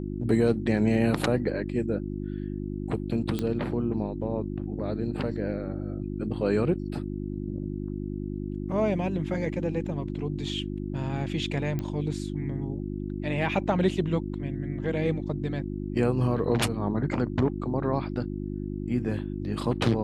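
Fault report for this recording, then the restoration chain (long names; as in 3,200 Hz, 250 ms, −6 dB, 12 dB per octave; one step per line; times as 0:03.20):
mains hum 50 Hz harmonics 7 −33 dBFS
0:03.39: click −16 dBFS
0:11.79: click −19 dBFS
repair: click removal
hum removal 50 Hz, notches 7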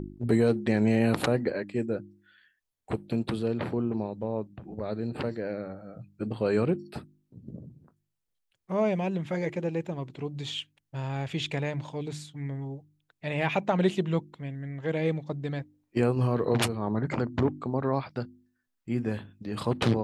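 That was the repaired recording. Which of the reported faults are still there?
none of them is left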